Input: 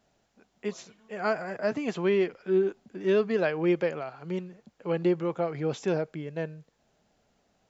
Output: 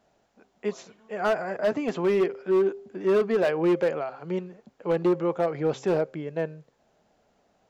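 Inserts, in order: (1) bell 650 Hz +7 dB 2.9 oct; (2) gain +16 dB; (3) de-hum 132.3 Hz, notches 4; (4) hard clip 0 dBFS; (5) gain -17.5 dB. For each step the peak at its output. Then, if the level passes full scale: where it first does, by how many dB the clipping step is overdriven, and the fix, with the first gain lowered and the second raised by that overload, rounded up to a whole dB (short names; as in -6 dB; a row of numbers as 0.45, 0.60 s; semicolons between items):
-8.5, +7.5, +8.0, 0.0, -17.5 dBFS; step 2, 8.0 dB; step 2 +8 dB, step 5 -9.5 dB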